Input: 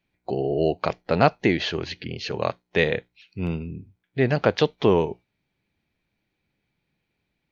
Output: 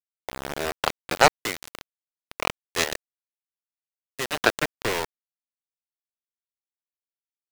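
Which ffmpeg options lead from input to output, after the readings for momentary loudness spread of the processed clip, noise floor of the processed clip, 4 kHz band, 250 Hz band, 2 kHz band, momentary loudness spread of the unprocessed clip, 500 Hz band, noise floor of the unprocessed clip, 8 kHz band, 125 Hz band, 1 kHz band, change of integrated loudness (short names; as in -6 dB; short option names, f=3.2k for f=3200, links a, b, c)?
17 LU, under -85 dBFS, +2.0 dB, -11.5 dB, +2.0 dB, 13 LU, -7.0 dB, -78 dBFS, n/a, -13.5 dB, +1.0 dB, -1.5 dB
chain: -filter_complex "[0:a]acrossover=split=500 2600:gain=0.1 1 0.0708[a][b][c];[a][b][c]amix=inputs=3:normalize=0,aeval=exprs='val(0)*gte(abs(val(0)),0.0562)':c=same,aeval=exprs='0.447*(cos(1*acos(clip(val(0)/0.447,-1,1)))-cos(1*PI/2))+0.158*(cos(7*acos(clip(val(0)/0.447,-1,1)))-cos(7*PI/2))':c=same,volume=3.5dB"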